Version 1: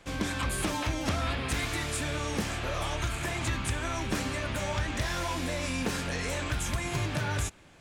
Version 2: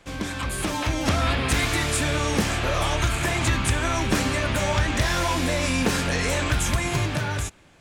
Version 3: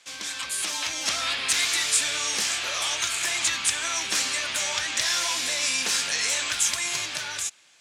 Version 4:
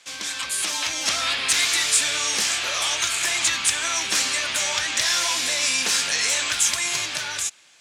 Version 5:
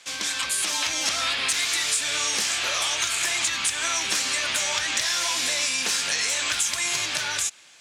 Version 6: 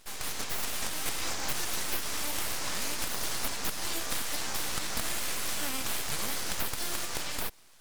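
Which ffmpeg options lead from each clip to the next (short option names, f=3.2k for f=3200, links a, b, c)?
-af "dynaudnorm=f=160:g=11:m=7dB,volume=1.5dB"
-af "bandpass=f=6k:t=q:w=0.91:csg=0,volume=7.5dB"
-af "asoftclip=type=tanh:threshold=-7.5dB,volume=3.5dB"
-af "acompressor=threshold=-24dB:ratio=6,volume=2.5dB"
-af "aeval=exprs='abs(val(0))':c=same,volume=-5dB"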